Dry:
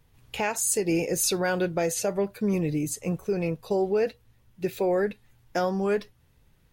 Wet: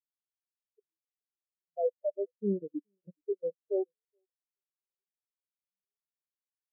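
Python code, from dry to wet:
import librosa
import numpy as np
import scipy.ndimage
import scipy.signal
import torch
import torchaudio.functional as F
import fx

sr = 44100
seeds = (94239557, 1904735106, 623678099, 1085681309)

y = scipy.signal.medfilt(x, 41)
y = scipy.signal.sosfilt(scipy.signal.butter(2, 90.0, 'highpass', fs=sr, output='sos'), y)
y = fx.high_shelf(y, sr, hz=11000.0, db=12.0)
y = fx.rider(y, sr, range_db=10, speed_s=2.0)
y = fx.peak_eq(y, sr, hz=690.0, db=15.0, octaves=1.6, at=(1.76, 3.82), fade=0.02)
y = fx.level_steps(y, sr, step_db=22)
y = fx.echo_feedback(y, sr, ms=423, feedback_pct=41, wet_db=-13)
y = fx.spectral_expand(y, sr, expansion=4.0)
y = y * 10.0 ** (-7.0 / 20.0)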